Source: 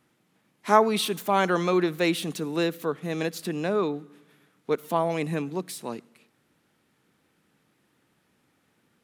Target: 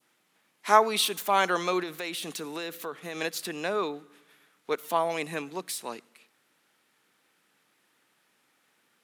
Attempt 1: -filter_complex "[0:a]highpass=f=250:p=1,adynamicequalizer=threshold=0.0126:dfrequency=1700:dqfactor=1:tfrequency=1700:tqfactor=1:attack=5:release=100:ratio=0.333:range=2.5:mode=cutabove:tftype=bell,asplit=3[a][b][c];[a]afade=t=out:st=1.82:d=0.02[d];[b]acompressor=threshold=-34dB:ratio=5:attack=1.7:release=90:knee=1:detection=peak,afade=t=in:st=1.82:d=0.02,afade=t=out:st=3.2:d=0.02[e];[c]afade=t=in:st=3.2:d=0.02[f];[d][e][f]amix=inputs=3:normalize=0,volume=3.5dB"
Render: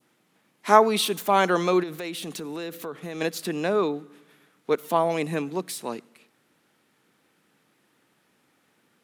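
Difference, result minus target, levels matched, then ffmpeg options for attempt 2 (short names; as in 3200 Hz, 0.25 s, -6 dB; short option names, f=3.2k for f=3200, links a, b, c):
250 Hz band +4.5 dB
-filter_complex "[0:a]highpass=f=1k:p=1,adynamicequalizer=threshold=0.0126:dfrequency=1700:dqfactor=1:tfrequency=1700:tqfactor=1:attack=5:release=100:ratio=0.333:range=2.5:mode=cutabove:tftype=bell,asplit=3[a][b][c];[a]afade=t=out:st=1.82:d=0.02[d];[b]acompressor=threshold=-34dB:ratio=5:attack=1.7:release=90:knee=1:detection=peak,afade=t=in:st=1.82:d=0.02,afade=t=out:st=3.2:d=0.02[e];[c]afade=t=in:st=3.2:d=0.02[f];[d][e][f]amix=inputs=3:normalize=0,volume=3.5dB"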